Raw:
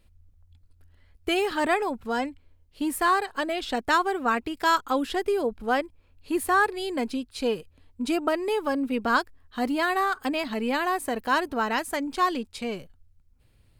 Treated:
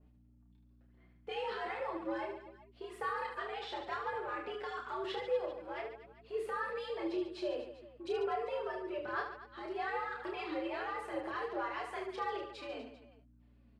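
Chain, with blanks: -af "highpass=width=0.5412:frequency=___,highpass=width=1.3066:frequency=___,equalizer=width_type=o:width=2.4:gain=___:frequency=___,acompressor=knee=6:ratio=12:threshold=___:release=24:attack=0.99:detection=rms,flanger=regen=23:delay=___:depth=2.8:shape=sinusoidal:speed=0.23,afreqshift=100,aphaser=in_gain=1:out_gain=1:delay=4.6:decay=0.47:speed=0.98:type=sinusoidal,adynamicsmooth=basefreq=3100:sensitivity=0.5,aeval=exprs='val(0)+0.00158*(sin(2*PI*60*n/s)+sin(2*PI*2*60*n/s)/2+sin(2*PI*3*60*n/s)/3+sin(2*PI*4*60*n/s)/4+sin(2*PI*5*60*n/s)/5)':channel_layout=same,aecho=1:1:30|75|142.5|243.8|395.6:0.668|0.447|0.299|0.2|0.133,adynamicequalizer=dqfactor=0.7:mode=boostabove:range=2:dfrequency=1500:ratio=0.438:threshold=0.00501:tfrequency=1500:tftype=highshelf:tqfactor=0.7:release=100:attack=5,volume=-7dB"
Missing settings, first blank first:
64, 64, 3, 900, -27dB, 6.2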